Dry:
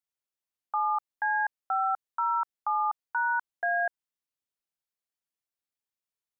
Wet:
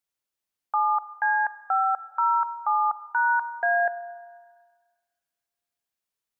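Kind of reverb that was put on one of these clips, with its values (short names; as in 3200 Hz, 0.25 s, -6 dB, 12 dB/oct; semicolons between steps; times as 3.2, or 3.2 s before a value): Schroeder reverb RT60 1.8 s, combs from 33 ms, DRR 15 dB; gain +4.5 dB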